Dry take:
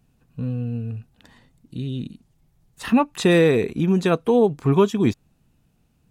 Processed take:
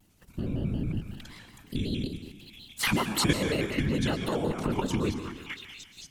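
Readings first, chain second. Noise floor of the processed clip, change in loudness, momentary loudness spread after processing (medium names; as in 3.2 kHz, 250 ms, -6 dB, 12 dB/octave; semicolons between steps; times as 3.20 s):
-57 dBFS, -9.5 dB, 19 LU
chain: dynamic bell 180 Hz, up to +7 dB, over -36 dBFS, Q 6.3; de-hum 47.25 Hz, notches 9; on a send: repeats whose band climbs or falls 228 ms, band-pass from 1.1 kHz, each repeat 0.7 oct, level -8.5 dB; on the sum: level held to a coarse grid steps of 12 dB; band-stop 460 Hz, Q 12; compression 4:1, threshold -36 dBFS, peak gain reduction 19.5 dB; whisper effect; treble shelf 2.2 kHz +9.5 dB; plate-style reverb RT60 1.1 s, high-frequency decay 0.85×, pre-delay 105 ms, DRR 9 dB; vibrato with a chosen wave square 5.4 Hz, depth 160 cents; trim +8 dB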